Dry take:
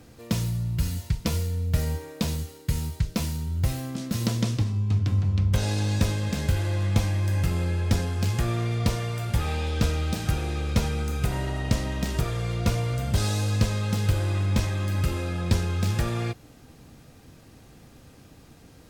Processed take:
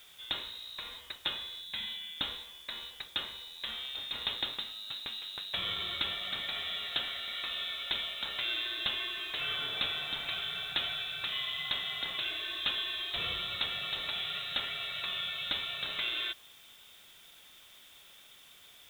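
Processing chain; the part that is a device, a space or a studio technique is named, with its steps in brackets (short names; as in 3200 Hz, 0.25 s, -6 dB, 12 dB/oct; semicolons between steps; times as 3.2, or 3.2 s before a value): scrambled radio voice (BPF 380–3100 Hz; inverted band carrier 3900 Hz; white noise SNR 23 dB); 1.61–2.18 thirty-one-band EQ 200 Hz +9 dB, 400 Hz -9 dB, 630 Hz -6 dB, 1250 Hz -9 dB, 5000 Hz -5 dB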